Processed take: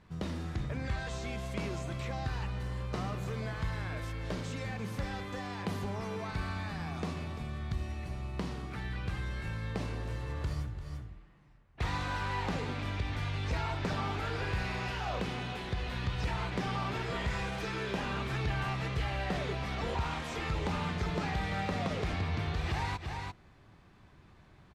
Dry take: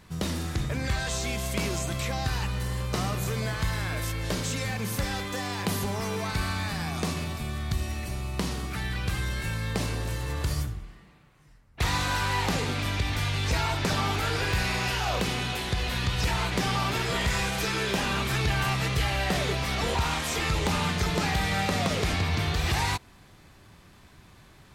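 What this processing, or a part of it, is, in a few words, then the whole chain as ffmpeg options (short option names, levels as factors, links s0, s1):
ducked delay: -filter_complex "[0:a]asplit=3[s0][s1][s2];[s1]adelay=343,volume=0.562[s3];[s2]apad=whole_len=1106219[s4];[s3][s4]sidechaincompress=threshold=0.00794:ratio=8:attack=44:release=100[s5];[s0][s5]amix=inputs=2:normalize=0,aemphasis=mode=reproduction:type=75fm,volume=0.447"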